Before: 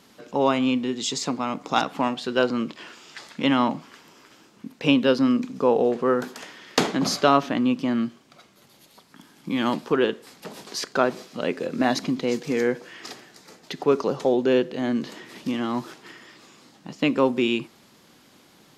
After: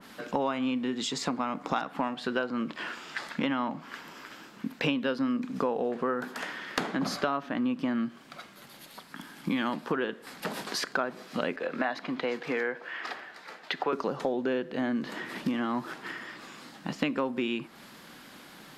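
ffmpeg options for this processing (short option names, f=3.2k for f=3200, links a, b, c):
-filter_complex "[0:a]asettb=1/sr,asplit=3[a][b][c];[a]atrim=end=3.294[d];[b]atrim=start=3.29:end=5.05,asetpts=PTS-STARTPTS,afade=t=in:d=0.004:c=qsin,afade=t=out:st=1.756:d=0.004:c=qsin,equalizer=f=9.4k:w=5.2:g=-6.5[e];[c]atrim=start=5.046[f];[d][e]acrossfade=d=0.004:c1=hsin:c2=qsin[g];[g][f]acrossfade=d=0.004:c1=qsin:c2=hsin,asettb=1/sr,asplit=3[h][i][j];[h]atrim=end=11.564[k];[i]atrim=start=11.56:end=13.93,asetpts=PTS-STARTPTS,afade=t=in:d=0.004:c=qsin,afade=t=out:st=2.366:d=0.004:c=qsin,acrossover=split=450 4100:gain=0.224 1 0.224[l][m][n];[l][m][n]amix=inputs=3:normalize=0[o];[j]atrim=start=13.926[p];[k][o]acrossfade=d=0.004:c1=hsin:c2=qsin[q];[q][p]acrossfade=d=0.004:c1=qsin:c2=hsin,equalizer=f=100:t=o:w=0.67:g=-9,equalizer=f=400:t=o:w=0.67:g=-4,equalizer=f=1.6k:t=o:w=0.67:g=5,equalizer=f=6.3k:t=o:w=0.67:g=-5,acompressor=threshold=-32dB:ratio=6,adynamicequalizer=threshold=0.00282:dfrequency=2000:dqfactor=0.7:tfrequency=2000:tqfactor=0.7:attack=5:release=100:ratio=0.375:range=2.5:mode=cutabove:tftype=highshelf,volume=5.5dB"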